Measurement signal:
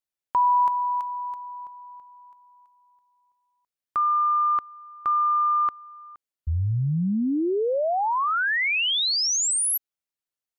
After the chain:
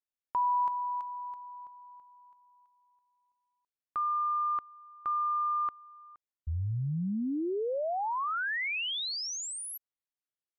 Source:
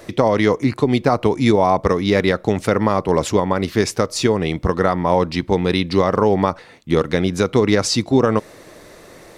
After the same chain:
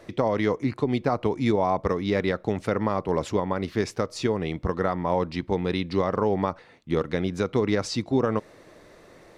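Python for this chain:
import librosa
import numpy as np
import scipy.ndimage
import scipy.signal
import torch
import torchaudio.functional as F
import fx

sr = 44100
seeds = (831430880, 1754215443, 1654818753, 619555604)

y = fx.lowpass(x, sr, hz=3800.0, slope=6)
y = F.gain(torch.from_numpy(y), -8.0).numpy()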